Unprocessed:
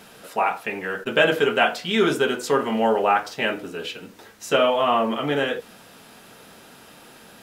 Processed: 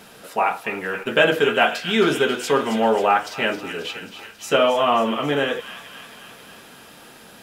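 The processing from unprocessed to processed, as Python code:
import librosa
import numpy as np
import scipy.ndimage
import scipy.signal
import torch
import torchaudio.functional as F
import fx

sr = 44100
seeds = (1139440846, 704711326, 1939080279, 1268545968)

y = fx.echo_wet_highpass(x, sr, ms=270, feedback_pct=65, hz=1700.0, wet_db=-9.5)
y = F.gain(torch.from_numpy(y), 1.5).numpy()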